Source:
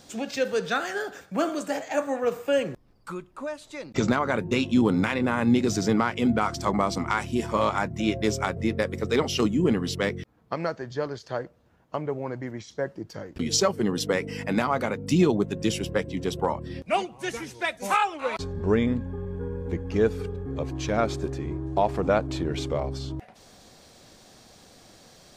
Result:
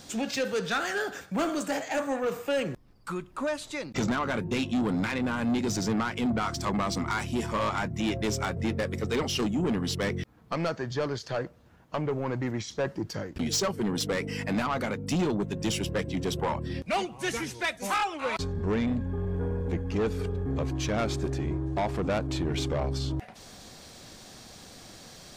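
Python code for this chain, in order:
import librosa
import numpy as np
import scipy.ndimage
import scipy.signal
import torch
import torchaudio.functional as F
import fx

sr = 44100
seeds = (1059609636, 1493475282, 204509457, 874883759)

p1 = fx.peak_eq(x, sr, hz=540.0, db=-3.5, octaves=1.6)
p2 = fx.rider(p1, sr, range_db=10, speed_s=0.5)
p3 = p1 + (p2 * librosa.db_to_amplitude(1.0))
p4 = 10.0 ** (-18.0 / 20.0) * np.tanh(p3 / 10.0 ** (-18.0 / 20.0))
y = p4 * librosa.db_to_amplitude(-4.5)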